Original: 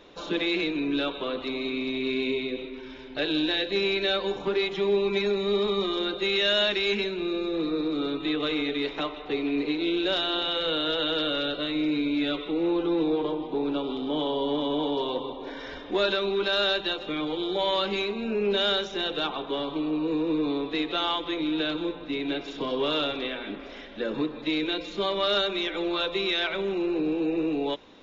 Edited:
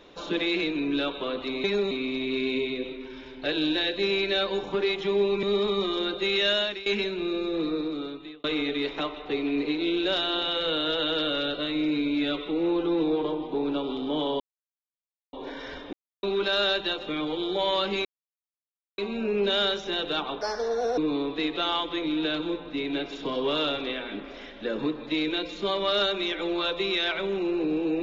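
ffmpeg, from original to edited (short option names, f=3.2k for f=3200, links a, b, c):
-filter_complex "[0:a]asplit=13[a][b][c][d][e][f][g][h][i][j][k][l][m];[a]atrim=end=1.642[n];[b]atrim=start=5.158:end=5.432[o];[c]atrim=start=1.638:end=5.162[p];[d]atrim=start=5.428:end=6.86,asetpts=PTS-STARTPTS,afade=t=out:st=1.062:d=0.37:silence=0.149624[q];[e]atrim=start=6.86:end=8.44,asetpts=PTS-STARTPTS,afade=t=in:d=0.004:c=hsin:silence=0.149624,afade=t=out:st=0.82:d=0.76[r];[f]atrim=start=8.44:end=14.4,asetpts=PTS-STARTPTS,afade=t=in:d=0.004:c=hsin,afade=t=out:st=5.956:d=0.004:c=hsin[s];[g]atrim=start=14.4:end=15.33,asetpts=PTS-STARTPTS,volume=0[t];[h]atrim=start=15.33:end=15.93,asetpts=PTS-STARTPTS,afade=t=in:d=0.004:c=hsin,afade=t=out:st=0.596:d=0.004:c=hsin[u];[i]atrim=start=15.93:end=16.23,asetpts=PTS-STARTPTS,volume=0[v];[j]atrim=start=16.23:end=18.05,asetpts=PTS-STARTPTS,afade=t=in:d=0.004:c=hsin,afade=t=out:st=1.816:d=0.004:c=hsin,apad=pad_dur=0.93[w];[k]atrim=start=18.05:end=19.484,asetpts=PTS-STARTPTS,afade=t=in:d=0.004:c=hsin[x];[l]atrim=start=19.48:end=20.33,asetpts=PTS-STARTPTS,asetrate=66150,aresample=44100[y];[m]atrim=start=20.326[z];[n][o]acrossfade=d=0.004:c1=hsin:c2=hsin[aa];[aa][p]acrossfade=d=0.004:c1=hsin:c2=hsin[ab];[q][r][s][t][u][v][w][x]concat=n=8:v=0:a=1[ac];[ab][ac]acrossfade=d=0.004:c1=hsin:c2=hsin[ad];[ad][y]acrossfade=d=0.004:c1=hsin:c2=hsin[ae];[ae][z]acrossfade=d=0.004:c1=hsin:c2=hsin"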